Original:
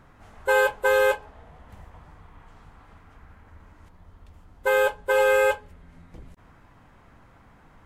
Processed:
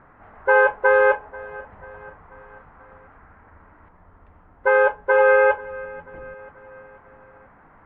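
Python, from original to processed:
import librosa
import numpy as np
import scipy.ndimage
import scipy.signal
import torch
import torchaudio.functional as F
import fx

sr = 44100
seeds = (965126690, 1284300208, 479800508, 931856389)

y = scipy.signal.sosfilt(scipy.signal.butter(4, 1900.0, 'lowpass', fs=sr, output='sos'), x)
y = fx.low_shelf(y, sr, hz=270.0, db=-10.5)
y = fx.echo_feedback(y, sr, ms=488, feedback_pct=54, wet_db=-20.5)
y = F.gain(torch.from_numpy(y), 6.5).numpy()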